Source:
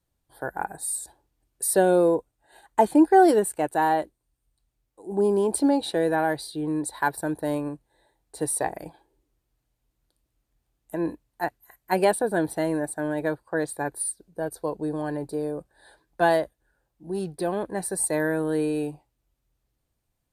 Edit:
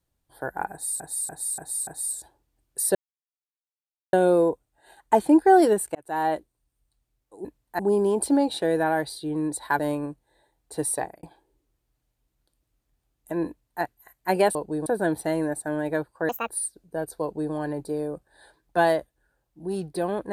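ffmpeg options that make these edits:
ffmpeg -i in.wav -filter_complex "[0:a]asplit=15[link_01][link_02][link_03][link_04][link_05][link_06][link_07][link_08][link_09][link_10][link_11][link_12][link_13][link_14][link_15];[link_01]atrim=end=1.002[link_16];[link_02]atrim=start=0.708:end=1.002[link_17];[link_03]atrim=start=0.708:end=1.002[link_18];[link_04]atrim=start=0.708:end=1.002[link_19];[link_05]atrim=start=0.708:end=1.79,asetpts=PTS-STARTPTS,afade=type=out:start_time=1.078:duration=0.004:curve=hsin,apad=pad_dur=1.18[link_20];[link_06]atrim=start=1.79:end=3.61,asetpts=PTS-STARTPTS,afade=type=in:duration=0.004:curve=hsin,afade=type=out:start_time=1.816:duration=0.004:curve=hsin[link_21];[link_07]atrim=start=3.61:end=5.112,asetpts=PTS-STARTPTS,afade=type=in:duration=0.39[link_22];[link_08]atrim=start=11.108:end=11.452[link_23];[link_09]atrim=start=5.108:end=7.112[link_24];[link_10]atrim=start=7.418:end=8.86,asetpts=PTS-STARTPTS,afade=type=out:start_time=1.152:duration=0.29[link_25];[link_11]atrim=start=8.86:end=12.182,asetpts=PTS-STARTPTS,afade=type=in:duration=0.004:curve=hsin[link_26];[link_12]atrim=start=14.658:end=14.972[link_27];[link_13]atrim=start=12.178:end=13.614[link_28];[link_14]atrim=start=13.61:end=13.93,asetpts=PTS-STARTPTS,asetrate=70560,aresample=44100[link_29];[link_15]atrim=start=13.926[link_30];[link_16][link_17]acrossfade=duration=0.004:curve1=hsin:curve2=hsin[link_31];[link_31][link_18]acrossfade=duration=0.004:curve1=hsin:curve2=hsin[link_32];[link_32][link_19]acrossfade=duration=0.004:curve1=hsin:curve2=hsin[link_33];[link_20][link_21][link_22]concat=n=3:v=0:a=1[link_34];[link_33][link_34]acrossfade=duration=0.004:curve1=hsin:curve2=hsin[link_35];[link_35][link_23]acrossfade=duration=0.004:curve1=hsin:curve2=hsin[link_36];[link_36][link_24]acrossfade=duration=0.004:curve1=hsin:curve2=hsin[link_37];[link_25][link_26]concat=n=2:v=0:a=1[link_38];[link_37][link_38]acrossfade=duration=0.004:curve1=hsin:curve2=hsin[link_39];[link_39][link_27]acrossfade=duration=0.004:curve1=hsin:curve2=hsin[link_40];[link_40][link_28]acrossfade=duration=0.004:curve1=hsin:curve2=hsin[link_41];[link_41][link_29]acrossfade=duration=0.004:curve1=hsin:curve2=hsin[link_42];[link_42][link_30]acrossfade=duration=0.004:curve1=hsin:curve2=hsin" out.wav

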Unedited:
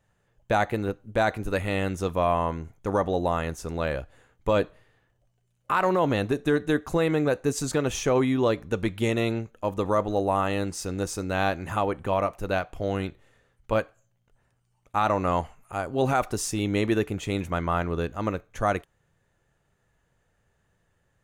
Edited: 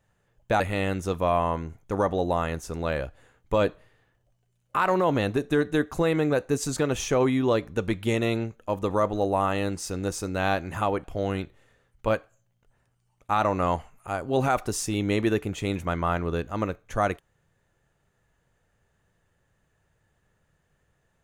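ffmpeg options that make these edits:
ffmpeg -i in.wav -filter_complex "[0:a]asplit=3[link_01][link_02][link_03];[link_01]atrim=end=0.602[link_04];[link_02]atrim=start=1.548:end=11.992[link_05];[link_03]atrim=start=12.688[link_06];[link_04][link_05]acrossfade=duration=0.004:curve1=hsin:curve2=hsin[link_07];[link_07][link_06]acrossfade=duration=0.004:curve1=hsin:curve2=hsin" out.wav

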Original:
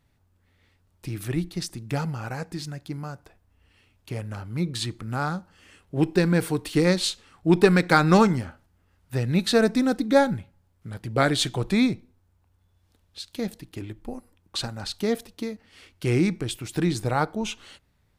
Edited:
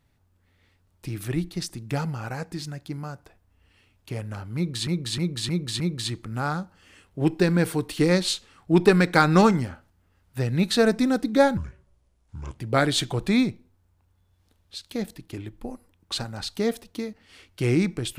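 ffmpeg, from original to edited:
ffmpeg -i in.wav -filter_complex "[0:a]asplit=7[link_01][link_02][link_03][link_04][link_05][link_06][link_07];[link_01]atrim=end=4.872[link_08];[link_02]atrim=start=4.558:end=4.872[link_09];[link_03]atrim=start=4.558:end=4.872[link_10];[link_04]atrim=start=4.558:end=4.872[link_11];[link_05]atrim=start=4.558:end=10.334[link_12];[link_06]atrim=start=10.33:end=11.02,asetpts=PTS-STARTPTS,asetrate=29988,aresample=44100[link_13];[link_07]atrim=start=11.016[link_14];[link_08][link_09]acrossfade=duration=0.004:curve1=hsin:curve2=hsin[link_15];[link_15][link_10]acrossfade=duration=0.004:curve1=hsin:curve2=hsin[link_16];[link_16][link_11]acrossfade=duration=0.004:curve1=hsin:curve2=hsin[link_17];[link_17][link_12]acrossfade=duration=0.004:curve1=hsin:curve2=hsin[link_18];[link_18][link_13]acrossfade=duration=0.004:curve1=hsin:curve2=hsin[link_19];[link_19][link_14]acrossfade=duration=0.004:curve1=hsin:curve2=hsin" out.wav

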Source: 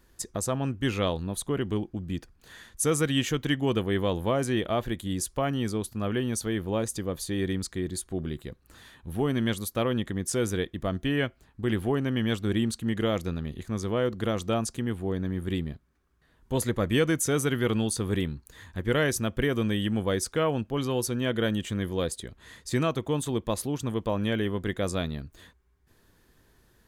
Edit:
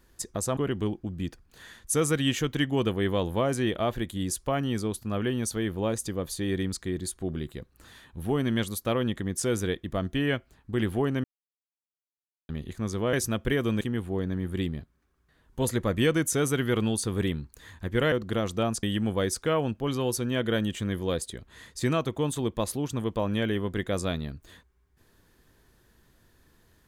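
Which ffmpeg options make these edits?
ffmpeg -i in.wav -filter_complex "[0:a]asplit=8[link_01][link_02][link_03][link_04][link_05][link_06][link_07][link_08];[link_01]atrim=end=0.572[link_09];[link_02]atrim=start=1.468:end=12.14,asetpts=PTS-STARTPTS,afade=type=out:start_time=10.668:duration=0.004:curve=hsin[link_10];[link_03]atrim=start=12.14:end=13.39,asetpts=PTS-STARTPTS,volume=0[link_11];[link_04]atrim=start=13.39:end=14.032,asetpts=PTS-STARTPTS,afade=type=in:duration=0.004:curve=hsin[link_12];[link_05]atrim=start=19.048:end=19.732[link_13];[link_06]atrim=start=14.738:end=19.052[link_14];[link_07]atrim=start=14.028:end=14.742[link_15];[link_08]atrim=start=19.728[link_16];[link_10][link_11][link_12]concat=n=3:v=0:a=1[link_17];[link_09][link_17]acrossfade=duration=0.004:curve1=hsin:curve2=hsin[link_18];[link_18][link_13]acrossfade=duration=0.004:curve1=hsin:curve2=hsin[link_19];[link_19][link_14]acrossfade=duration=0.004:curve1=hsin:curve2=hsin[link_20];[link_20][link_15]acrossfade=duration=0.004:curve1=hsin:curve2=hsin[link_21];[link_21][link_16]acrossfade=duration=0.004:curve1=hsin:curve2=hsin" out.wav

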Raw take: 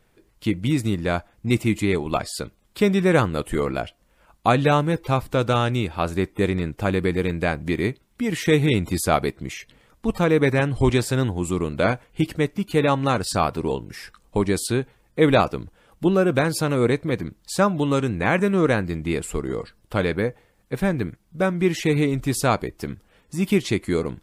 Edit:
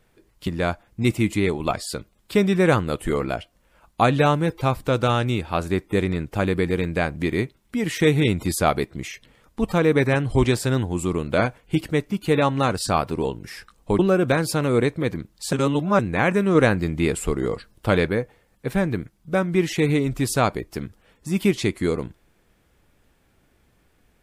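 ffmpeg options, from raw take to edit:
ffmpeg -i in.wav -filter_complex "[0:a]asplit=7[link_01][link_02][link_03][link_04][link_05][link_06][link_07];[link_01]atrim=end=0.472[link_08];[link_02]atrim=start=0.928:end=14.452[link_09];[link_03]atrim=start=16.058:end=17.602[link_10];[link_04]atrim=start=17.598:end=18.062,asetpts=PTS-STARTPTS,areverse[link_11];[link_05]atrim=start=18.058:end=18.622[link_12];[link_06]atrim=start=18.618:end=20.142,asetpts=PTS-STARTPTS,volume=3dB[link_13];[link_07]atrim=start=20.138[link_14];[link_08][link_09]acrossfade=duration=0.004:curve1=hsin:curve2=hsin[link_15];[link_15][link_10]acrossfade=duration=0.004:curve1=hsin:curve2=hsin[link_16];[link_16][link_11]acrossfade=duration=0.004:curve1=hsin:curve2=hsin[link_17];[link_17][link_12]acrossfade=duration=0.004:curve1=hsin:curve2=hsin[link_18];[link_18][link_13]acrossfade=duration=0.004:curve1=hsin:curve2=hsin[link_19];[link_19][link_14]acrossfade=duration=0.004:curve1=hsin:curve2=hsin" out.wav

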